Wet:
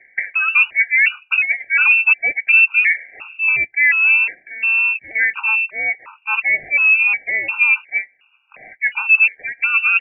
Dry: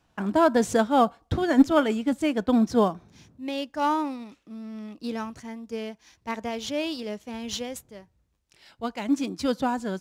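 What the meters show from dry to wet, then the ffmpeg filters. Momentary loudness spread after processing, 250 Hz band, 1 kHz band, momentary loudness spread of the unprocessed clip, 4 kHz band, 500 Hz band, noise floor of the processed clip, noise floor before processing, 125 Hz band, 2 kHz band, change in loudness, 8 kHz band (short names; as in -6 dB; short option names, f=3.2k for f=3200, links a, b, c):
10 LU, under -25 dB, -4.0 dB, 18 LU, n/a, -16.5 dB, -58 dBFS, -69 dBFS, under -15 dB, +25.5 dB, +11.5 dB, under -40 dB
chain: -filter_complex "[0:a]acrossover=split=230 2000:gain=0.0891 1 0.0794[a][b][c];[a][b][c]amix=inputs=3:normalize=0,areverse,acompressor=threshold=-38dB:ratio=5,areverse,apsyclip=33dB,lowpass=f=2.5k:t=q:w=0.5098,lowpass=f=2.5k:t=q:w=0.6013,lowpass=f=2.5k:t=q:w=0.9,lowpass=f=2.5k:t=q:w=2.563,afreqshift=-2900,afftfilt=real='re*gt(sin(2*PI*1.4*pts/sr)*(1-2*mod(floor(b*sr/1024/780),2)),0)':imag='im*gt(sin(2*PI*1.4*pts/sr)*(1-2*mod(floor(b*sr/1024/780),2)),0)':win_size=1024:overlap=0.75,volume=-5dB"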